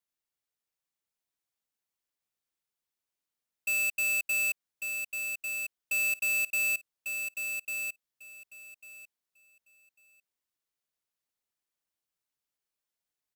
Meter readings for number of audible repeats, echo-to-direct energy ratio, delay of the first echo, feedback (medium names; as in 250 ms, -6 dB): 2, -6.0 dB, 1147 ms, 18%